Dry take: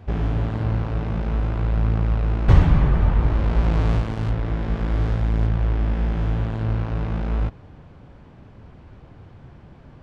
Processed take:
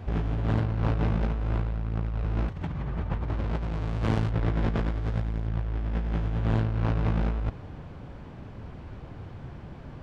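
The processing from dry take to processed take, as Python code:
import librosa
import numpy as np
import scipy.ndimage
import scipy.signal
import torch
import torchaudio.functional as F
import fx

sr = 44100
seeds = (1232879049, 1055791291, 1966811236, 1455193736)

y = fx.highpass(x, sr, hz=51.0, slope=24, at=(2.24, 4.17))
y = fx.over_compress(y, sr, threshold_db=-26.0, ratio=-1.0)
y = F.gain(torch.from_numpy(y), -1.5).numpy()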